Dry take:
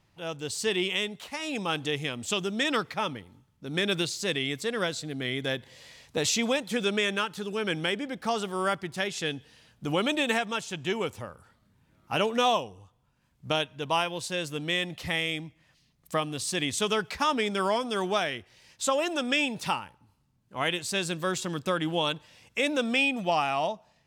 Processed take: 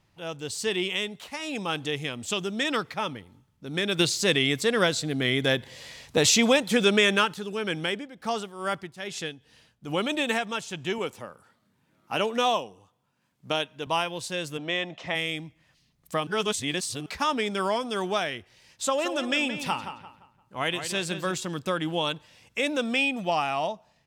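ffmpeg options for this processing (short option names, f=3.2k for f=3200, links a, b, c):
-filter_complex "[0:a]asettb=1/sr,asplit=3[a][b][c];[a]atrim=end=3.994[d];[b]atrim=start=3.99:end=7.34,asetpts=PTS-STARTPTS,afade=t=in:d=0.004:c=qsin,afade=t=out:st=3.346:d=0.004:c=qsin,acontrast=65[e];[c]atrim=start=7.336[f];[d][e]acrossfade=d=0.004:c1=hsin:c2=qsin[g];[g][f]acrossfade=d=0.004:c1=qsin:c2=hsin,asplit=3[h][i][j];[h]afade=t=out:st=7.88:d=0.02[k];[i]tremolo=f=2.4:d=0.71,afade=t=in:st=7.88:d=0.02,afade=t=out:st=10.09:d=0.02[l];[j]afade=t=in:st=10.09:d=0.02[m];[k][l][m]amix=inputs=3:normalize=0,asettb=1/sr,asplit=3[n][o][p];[n]atrim=end=10.984[q];[o]atrim=start=10.98:end=13.87,asetpts=PTS-STARTPTS,afade=t=in:d=0.004:c=qsin,afade=t=out:st=2.886:d=0.004:c=qsin,highpass=170[r];[p]atrim=start=13.866[s];[q][r]acrossfade=d=0.004:c1=hsin:c2=qsin[t];[t][s]acrossfade=d=0.004:c1=qsin:c2=hsin,asplit=3[u][v][w];[u]afade=t=out:st=14.57:d=0.02[x];[v]highpass=190,equalizer=f=650:t=q:w=4:g=8,equalizer=f=1k:t=q:w=4:g=4,equalizer=f=4.5k:t=q:w=4:g=-10,lowpass=f=6.1k:w=0.5412,lowpass=f=6.1k:w=1.3066,afade=t=in:st=14.57:d=0.02,afade=t=out:st=15.14:d=0.02[y];[w]afade=t=in:st=15.14:d=0.02[z];[x][y][z]amix=inputs=3:normalize=0,asplit=3[aa][ab][ac];[aa]afade=t=out:st=18.82:d=0.02[ad];[ab]asplit=2[ae][af];[af]adelay=173,lowpass=f=3.8k:p=1,volume=-9dB,asplit=2[ag][ah];[ah]adelay=173,lowpass=f=3.8k:p=1,volume=0.35,asplit=2[ai][aj];[aj]adelay=173,lowpass=f=3.8k:p=1,volume=0.35,asplit=2[ak][al];[al]adelay=173,lowpass=f=3.8k:p=1,volume=0.35[am];[ae][ag][ai][ak][am]amix=inputs=5:normalize=0,afade=t=in:st=18.82:d=0.02,afade=t=out:st=21.35:d=0.02[an];[ac]afade=t=in:st=21.35:d=0.02[ao];[ad][an][ao]amix=inputs=3:normalize=0,asplit=3[ap][aq][ar];[ap]atrim=end=16.272[as];[aq]atrim=start=16.268:end=17.062,asetpts=PTS-STARTPTS,areverse[at];[ar]atrim=start=17.058[au];[as][at]acrossfade=d=0.004:c1=hsin:c2=hsin[av];[av][au]acrossfade=d=0.004:c1=hsin:c2=hsin"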